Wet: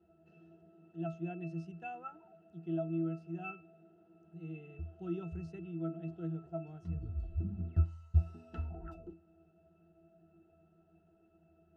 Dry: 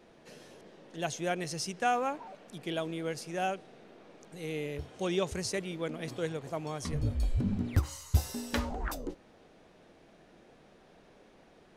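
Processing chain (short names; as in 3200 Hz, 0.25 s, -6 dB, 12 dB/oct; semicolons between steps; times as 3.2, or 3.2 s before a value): octave resonator E, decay 0.27 s; gain +5.5 dB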